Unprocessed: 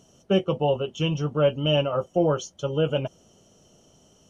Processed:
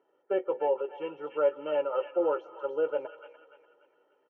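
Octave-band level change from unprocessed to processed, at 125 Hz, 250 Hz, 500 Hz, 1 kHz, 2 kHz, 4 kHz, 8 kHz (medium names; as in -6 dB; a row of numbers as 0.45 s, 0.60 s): under -35 dB, -13.5 dB, -4.0 dB, -4.0 dB, -8.5 dB, under -20 dB, no reading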